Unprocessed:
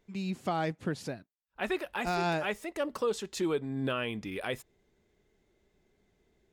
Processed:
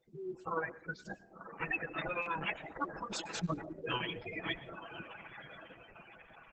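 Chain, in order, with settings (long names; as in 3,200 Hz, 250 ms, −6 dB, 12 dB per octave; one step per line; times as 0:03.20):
0:03.67–0:04.31: converter with a step at zero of −45 dBFS
feedback delay with all-pass diffusion 979 ms, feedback 50%, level −10.5 dB
0:02.57–0:03.04: dynamic equaliser 2,500 Hz, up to −6 dB, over −54 dBFS, Q 2.3
gate on every frequency bin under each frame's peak −15 dB strong
reverb reduction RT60 0.56 s
0:00.83–0:01.61: elliptic high-pass filter 240 Hz, stop band 60 dB
gate on every frequency bin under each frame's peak −15 dB weak
high-shelf EQ 4,600 Hz −10 dB
comb filter 6.1 ms, depth 98%
on a send at −18 dB: convolution reverb RT60 0.35 s, pre-delay 96 ms
on the sum: buffer that repeats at 0:02.22, samples 256, times 6
level +10 dB
Opus 10 kbit/s 48,000 Hz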